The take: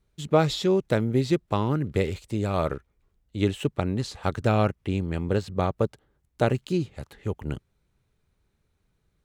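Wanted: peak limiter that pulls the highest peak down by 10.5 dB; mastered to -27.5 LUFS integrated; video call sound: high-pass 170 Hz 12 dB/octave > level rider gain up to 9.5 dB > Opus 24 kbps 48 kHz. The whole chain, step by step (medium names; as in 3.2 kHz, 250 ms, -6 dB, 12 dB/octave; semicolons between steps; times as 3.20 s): peak limiter -18 dBFS; high-pass 170 Hz 12 dB/octave; level rider gain up to 9.5 dB; trim +5 dB; Opus 24 kbps 48 kHz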